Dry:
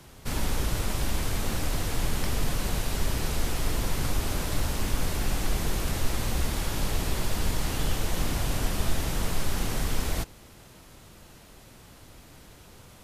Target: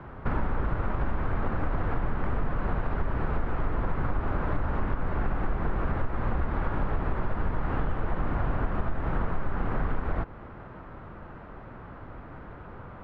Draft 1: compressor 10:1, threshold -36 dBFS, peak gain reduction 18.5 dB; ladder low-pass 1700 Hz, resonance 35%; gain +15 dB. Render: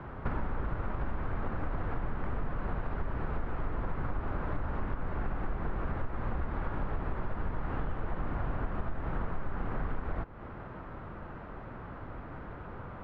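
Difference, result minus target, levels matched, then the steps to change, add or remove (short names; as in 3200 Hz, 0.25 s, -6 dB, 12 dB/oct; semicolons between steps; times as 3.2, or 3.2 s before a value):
compressor: peak gain reduction +6 dB
change: compressor 10:1, threshold -29.5 dBFS, peak gain reduction 13 dB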